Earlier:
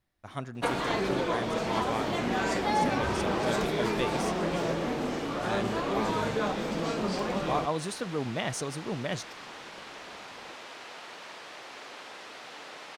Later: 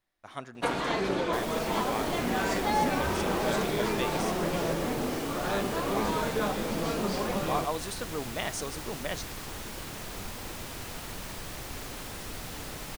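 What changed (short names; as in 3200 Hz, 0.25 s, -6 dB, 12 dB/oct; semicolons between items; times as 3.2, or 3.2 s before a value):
speech: add bell 94 Hz -11.5 dB 2.8 oct; second sound: remove BPF 500–4100 Hz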